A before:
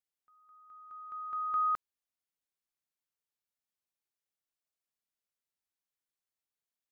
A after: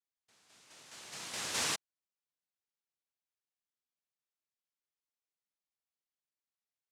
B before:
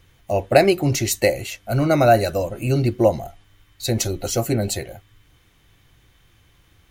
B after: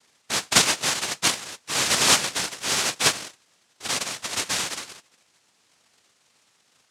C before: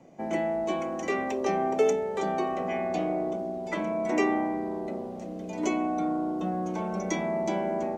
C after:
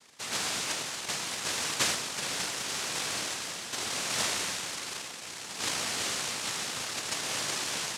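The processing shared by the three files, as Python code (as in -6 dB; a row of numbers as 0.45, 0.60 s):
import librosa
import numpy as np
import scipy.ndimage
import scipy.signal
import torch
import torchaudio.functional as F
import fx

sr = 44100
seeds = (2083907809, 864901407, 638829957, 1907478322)

y = fx.dynamic_eq(x, sr, hz=380.0, q=4.0, threshold_db=-33.0, ratio=4.0, max_db=-4)
y = fx.noise_vocoder(y, sr, seeds[0], bands=1)
y = y * librosa.db_to_amplitude(-4.5)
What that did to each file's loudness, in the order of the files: -2.5, -2.0, -2.0 LU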